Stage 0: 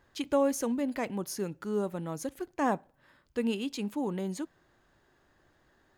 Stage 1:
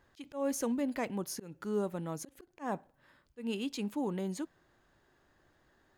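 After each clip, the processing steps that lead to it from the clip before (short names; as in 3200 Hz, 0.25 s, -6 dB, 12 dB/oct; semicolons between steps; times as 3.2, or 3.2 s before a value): auto swell 0.201 s; gain -2 dB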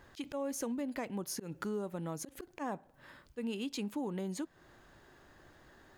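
compressor 4:1, threshold -46 dBFS, peak gain reduction 15.5 dB; gain +9 dB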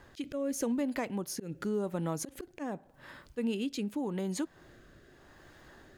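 rotary speaker horn 0.85 Hz; gain +6 dB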